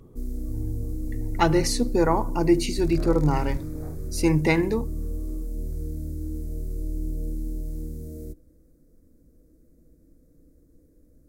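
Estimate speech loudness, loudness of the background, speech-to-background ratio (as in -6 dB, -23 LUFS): -23.5 LUFS, -34.0 LUFS, 10.5 dB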